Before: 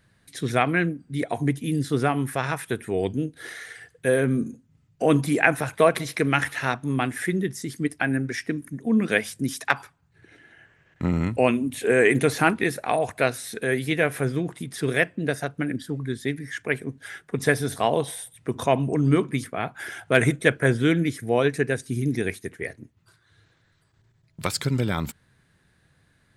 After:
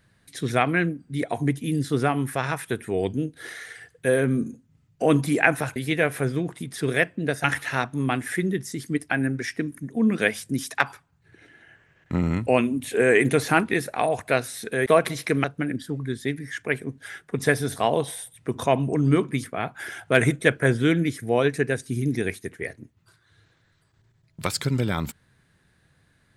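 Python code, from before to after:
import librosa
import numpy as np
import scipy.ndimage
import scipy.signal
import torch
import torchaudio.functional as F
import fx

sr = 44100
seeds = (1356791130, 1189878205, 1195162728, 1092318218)

y = fx.edit(x, sr, fx.swap(start_s=5.76, length_s=0.58, other_s=13.76, other_length_s=1.68), tone=tone)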